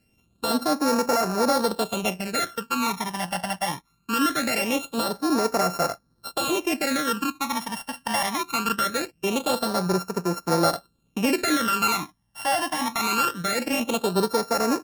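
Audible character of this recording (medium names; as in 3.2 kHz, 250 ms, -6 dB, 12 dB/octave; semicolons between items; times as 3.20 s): a buzz of ramps at a fixed pitch in blocks of 32 samples; phasing stages 12, 0.22 Hz, lowest notch 410–3200 Hz; MP3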